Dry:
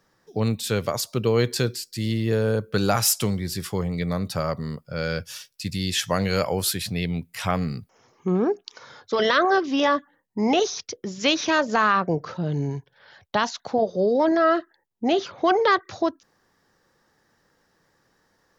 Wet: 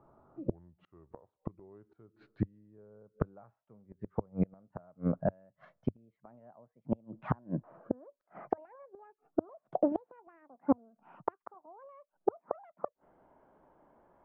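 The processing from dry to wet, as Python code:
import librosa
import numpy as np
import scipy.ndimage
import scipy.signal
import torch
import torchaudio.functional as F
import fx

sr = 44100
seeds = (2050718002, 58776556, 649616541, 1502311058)

y = fx.speed_glide(x, sr, from_pct=72, to_pct=189)
y = fx.peak_eq(y, sr, hz=620.0, db=4.5, octaves=0.44)
y = fx.gate_flip(y, sr, shuts_db=-18.0, range_db=-38)
y = scipy.signal.sosfilt(scipy.signal.butter(4, 1200.0, 'lowpass', fs=sr, output='sos'), y)
y = fx.peak_eq(y, sr, hz=99.0, db=-7.0, octaves=0.28)
y = y * librosa.db_to_amplitude(4.0)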